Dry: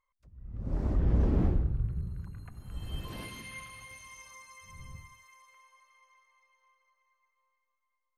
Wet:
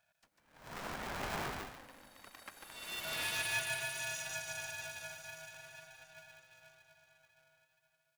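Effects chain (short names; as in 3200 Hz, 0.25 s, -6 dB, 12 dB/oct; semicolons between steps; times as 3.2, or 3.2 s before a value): HPF 1000 Hz 12 dB/oct; echo 0.147 s -5 dB; polarity switched at an audio rate 400 Hz; gain +8.5 dB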